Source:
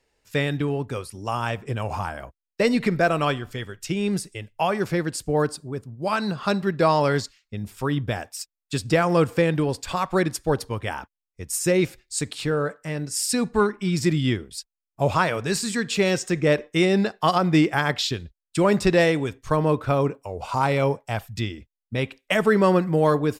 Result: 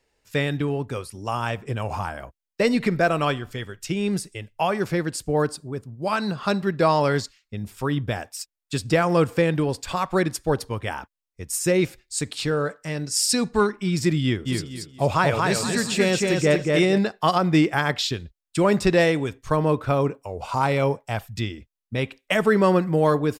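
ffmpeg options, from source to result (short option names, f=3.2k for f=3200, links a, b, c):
-filter_complex "[0:a]asettb=1/sr,asplit=3[a][b][c];[a]atrim=end=12.374[d];[b]atrim=start=12.37:end=13.8,asetpts=PTS-STARTPTS,afade=t=in:d=0.004:c=qsin,afade=t=out:st=1.426:d=0.004:c=qsin,equalizer=f=5.1k:t=o:w=1.3:g=6[e];[c]atrim=start=13.796[f];[d][e]acrossfade=d=0.004:c1=hsin:c2=qsin[g];[g][f]acrossfade=d=0.004:c1=qsin:c2=hsin,asplit=3[h][i][j];[h]afade=t=out:st=14.45:d=0.02[k];[i]aecho=1:1:231|462|693|924:0.708|0.205|0.0595|0.0173,afade=t=in:st=14.45:d=0.02,afade=t=out:st=16.97:d=0.02[l];[j]afade=t=in:st=16.97:d=0.02[m];[k][l][m]amix=inputs=3:normalize=0"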